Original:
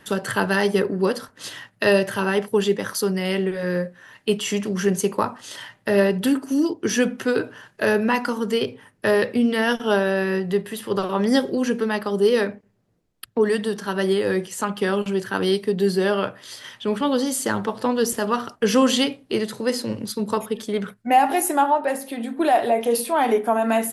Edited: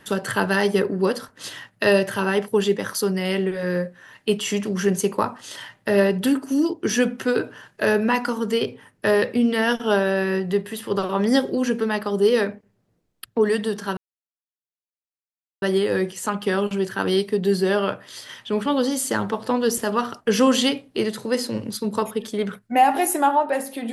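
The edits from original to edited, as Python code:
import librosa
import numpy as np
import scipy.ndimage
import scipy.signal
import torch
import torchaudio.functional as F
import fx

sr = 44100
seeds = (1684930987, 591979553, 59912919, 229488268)

y = fx.edit(x, sr, fx.insert_silence(at_s=13.97, length_s=1.65), tone=tone)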